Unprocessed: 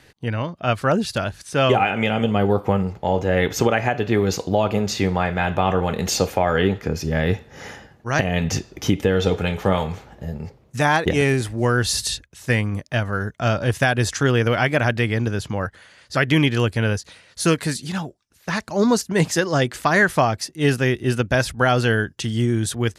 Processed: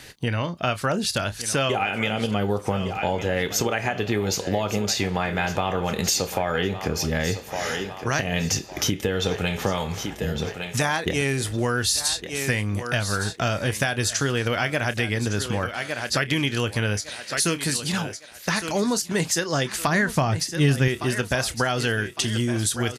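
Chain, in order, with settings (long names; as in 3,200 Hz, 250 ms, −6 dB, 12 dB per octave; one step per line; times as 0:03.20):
high-shelf EQ 2,600 Hz +9.5 dB
double-tracking delay 29 ms −14 dB
feedback echo with a high-pass in the loop 1,159 ms, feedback 32%, high-pass 230 Hz, level −14 dB
downward compressor 4 to 1, threshold −27 dBFS, peak gain reduction 15 dB
0:19.87–0:20.88: bass and treble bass +9 dB, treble −3 dB
level +4.5 dB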